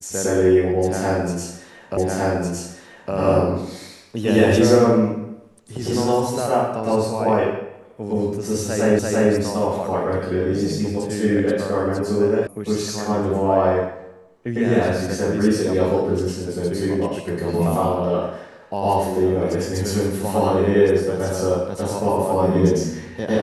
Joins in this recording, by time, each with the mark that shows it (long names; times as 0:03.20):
0:01.97: the same again, the last 1.16 s
0:08.99: the same again, the last 0.34 s
0:12.47: cut off before it has died away